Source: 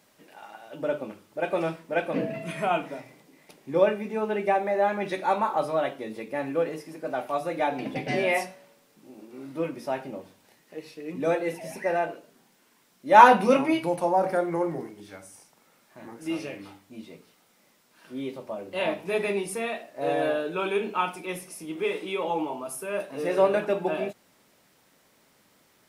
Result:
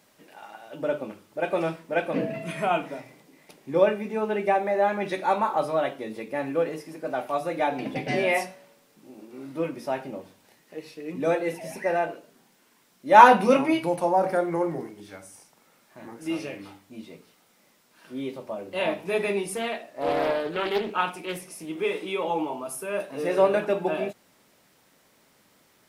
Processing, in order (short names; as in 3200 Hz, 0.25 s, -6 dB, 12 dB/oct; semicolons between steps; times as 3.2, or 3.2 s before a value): 19.56–21.69 Doppler distortion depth 0.37 ms; gain +1 dB